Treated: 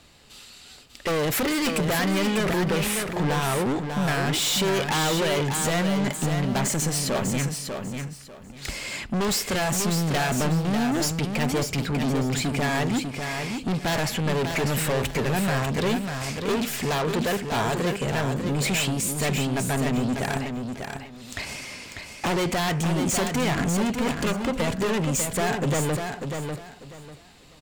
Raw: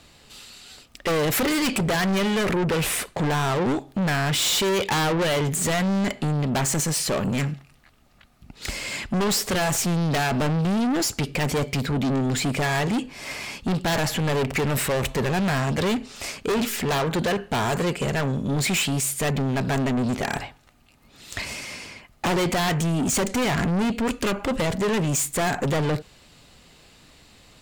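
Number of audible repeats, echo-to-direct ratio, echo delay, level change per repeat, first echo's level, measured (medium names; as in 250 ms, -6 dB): 3, -5.5 dB, 595 ms, -12.5 dB, -6.0 dB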